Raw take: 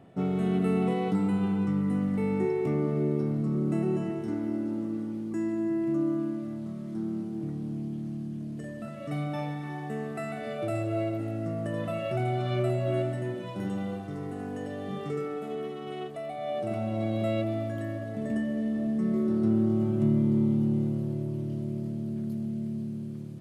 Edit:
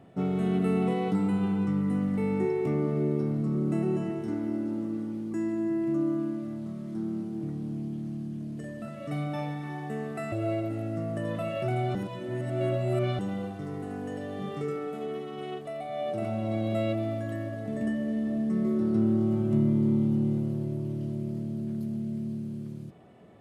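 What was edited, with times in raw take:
0:10.32–0:10.81: remove
0:12.44–0:13.68: reverse

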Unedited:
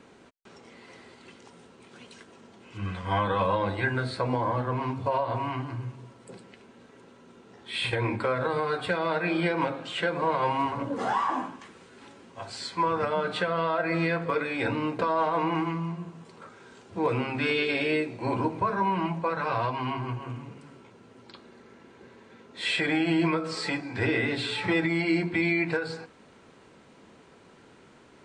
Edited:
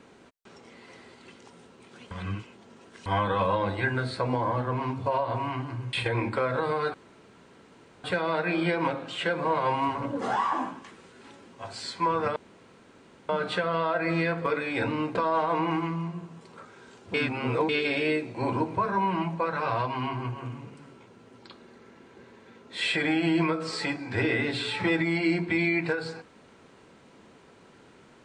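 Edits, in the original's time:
0:02.11–0:03.06: reverse
0:05.93–0:07.80: remove
0:08.81: splice in room tone 1.10 s
0:13.13: splice in room tone 0.93 s
0:16.98–0:17.53: reverse

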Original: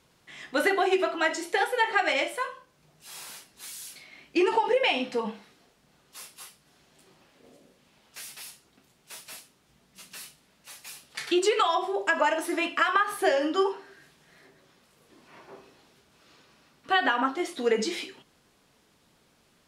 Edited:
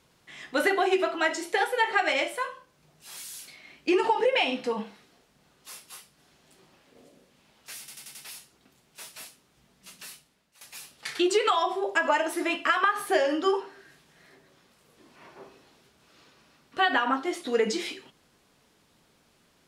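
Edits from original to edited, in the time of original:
0:03.17–0:03.65: remove
0:08.27: stutter 0.09 s, 5 plays
0:10.11–0:10.73: fade out, to −15 dB

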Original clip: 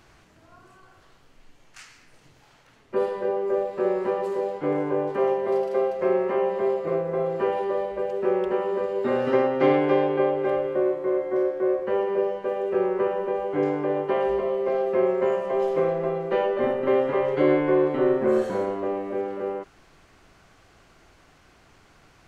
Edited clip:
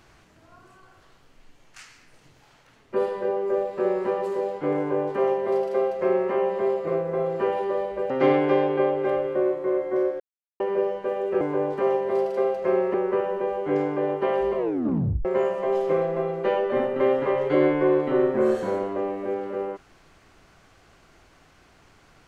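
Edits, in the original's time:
0:04.78–0:06.31: duplicate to 0:12.81
0:08.10–0:09.50: remove
0:11.60–0:12.00: silence
0:14.44: tape stop 0.68 s

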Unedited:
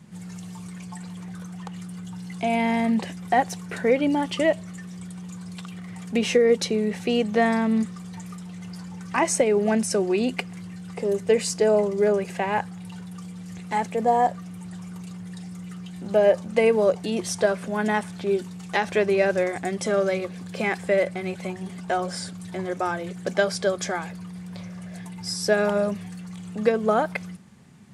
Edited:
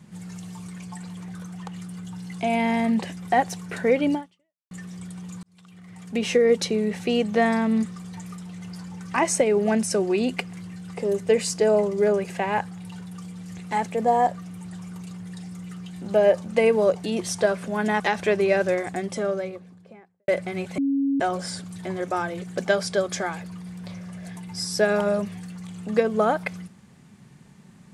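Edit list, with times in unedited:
0:04.14–0:04.71: fade out exponential
0:05.43–0:06.44: fade in
0:18.00–0:18.69: remove
0:19.37–0:20.97: fade out and dull
0:21.47–0:21.89: beep over 276 Hz −19.5 dBFS

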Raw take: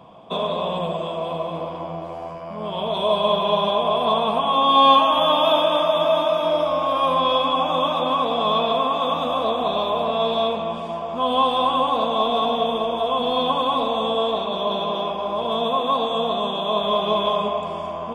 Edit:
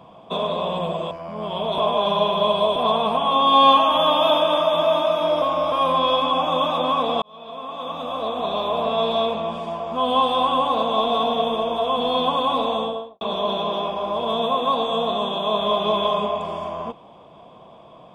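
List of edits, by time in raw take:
0:01.11–0:02.33: remove
0:03.00–0:03.98: reverse
0:06.64–0:06.94: reverse
0:08.44–0:10.09: fade in
0:13.92–0:14.43: fade out and dull

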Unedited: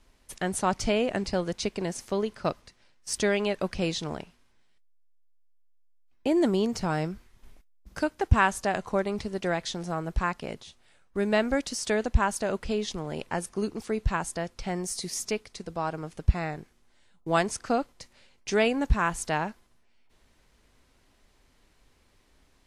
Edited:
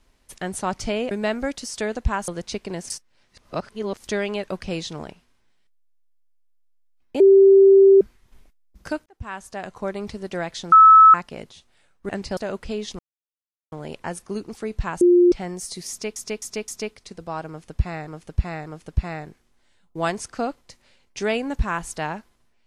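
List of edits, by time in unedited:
0:01.11–0:01.39: swap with 0:11.20–0:12.37
0:02.01–0:03.15: reverse
0:06.31–0:07.12: beep over 390 Hz −8 dBFS
0:08.17–0:09.14: fade in
0:09.83–0:10.25: beep over 1,300 Hz −6 dBFS
0:12.99: splice in silence 0.73 s
0:14.28–0:14.59: beep over 353 Hz −10.5 dBFS
0:15.17–0:15.43: repeat, 4 plays
0:15.97–0:16.56: repeat, 3 plays

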